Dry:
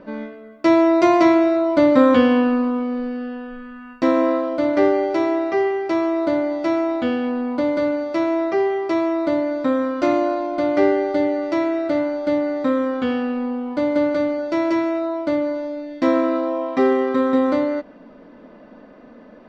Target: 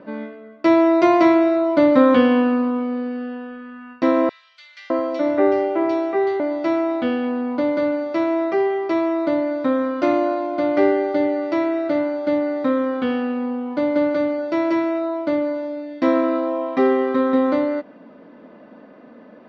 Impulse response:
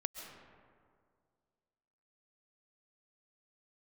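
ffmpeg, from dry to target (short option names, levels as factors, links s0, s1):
-filter_complex "[0:a]highpass=110,lowpass=4500,asettb=1/sr,asplit=3[s0][s1][s2];[s0]atrim=end=4.294[s3];[s1]atrim=start=4.29:end=6.4,asetpts=PTS-STARTPTS,afade=t=in:d=0.004:c=qsin,afade=t=out:st=2.106:d=0.004:c=qsin,acrossover=split=150|2400[s4][s5][s6];[s5]adelay=610[s7];[s4]adelay=700[s8];[s8][s7][s6]amix=inputs=3:normalize=0,atrim=end_sample=93051[s9];[s2]atrim=start=6.396[s10];[s3][s9]acrossfade=d=0.004:c1=hsin:c2=qsin[s11];[s11][s10]acrossfade=d=0.004:c1=qsin:c2=hsin"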